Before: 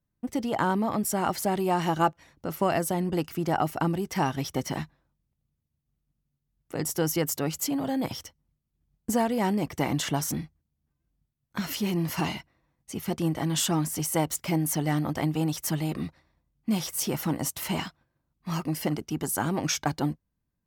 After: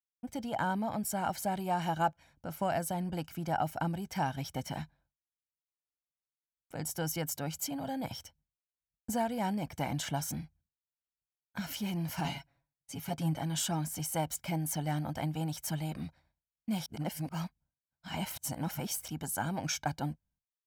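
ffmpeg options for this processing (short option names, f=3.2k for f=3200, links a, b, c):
-filter_complex "[0:a]asettb=1/sr,asplit=3[a][b][c];[a]atrim=end=12.244[d];[b]atrim=start=12.24:end=13.38,asetpts=PTS-STARTPTS,afade=t=in:d=0.004:c=qsin,afade=t=out:st=1.136:d=0.004:c=qsin,aecho=1:1:7.2:0.78,atrim=end_sample=50274[e];[c]atrim=start=13.376[f];[d][e]acrossfade=d=0.004:c1=hsin:c2=qsin[g];[g][f]acrossfade=d=0.004:c1=qsin:c2=hsin,asplit=3[h][i][j];[h]atrim=end=16.862[k];[i]atrim=start=16.858:end=19.082,asetpts=PTS-STARTPTS,areverse[l];[j]atrim=start=19.078[m];[k][l]acrossfade=d=0.004:c1=hsin:c2=hsin[n];[n][m]acrossfade=d=0.004:c1=hsin:c2=hsin,agate=range=-33dB:threshold=-56dB:ratio=3:detection=peak,aecho=1:1:1.3:0.57,volume=-8dB"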